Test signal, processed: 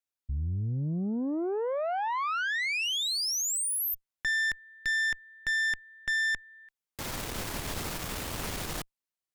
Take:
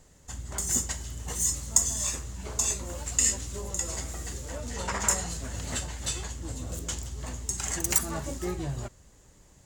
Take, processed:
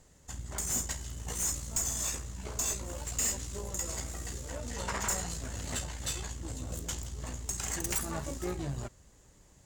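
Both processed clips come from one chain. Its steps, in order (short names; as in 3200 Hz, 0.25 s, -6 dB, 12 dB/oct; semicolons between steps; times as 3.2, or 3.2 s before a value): tube stage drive 26 dB, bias 0.6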